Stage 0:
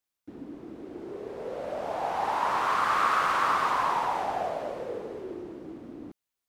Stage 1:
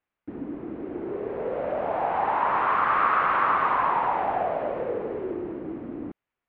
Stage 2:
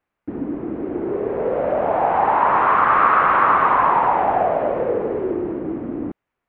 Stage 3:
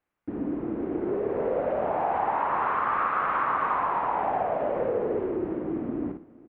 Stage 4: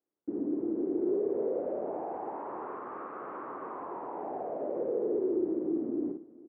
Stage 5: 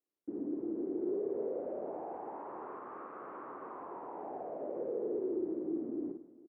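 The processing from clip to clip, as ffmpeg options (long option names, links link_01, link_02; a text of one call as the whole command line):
ffmpeg -i in.wav -filter_complex "[0:a]asplit=2[link_01][link_02];[link_02]acompressor=threshold=-33dB:ratio=6,volume=2.5dB[link_03];[link_01][link_03]amix=inputs=2:normalize=0,lowpass=frequency=2500:width=0.5412,lowpass=frequency=2500:width=1.3066" out.wav
ffmpeg -i in.wav -af "highshelf=frequency=3300:gain=-11.5,volume=8.5dB" out.wav
ffmpeg -i in.wav -filter_complex "[0:a]acompressor=threshold=-19dB:ratio=6,asplit=2[link_01][link_02];[link_02]aecho=0:1:55|116|465:0.501|0.126|0.112[link_03];[link_01][link_03]amix=inputs=2:normalize=0,volume=-5dB" out.wav
ffmpeg -i in.wav -filter_complex "[0:a]asplit=2[link_01][link_02];[link_02]alimiter=limit=-24dB:level=0:latency=1,volume=-1.5dB[link_03];[link_01][link_03]amix=inputs=2:normalize=0,bandpass=frequency=360:width_type=q:width=2.4:csg=0,volume=-3.5dB" out.wav
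ffmpeg -i in.wav -af "aecho=1:1:167:0.133,volume=-5.5dB" out.wav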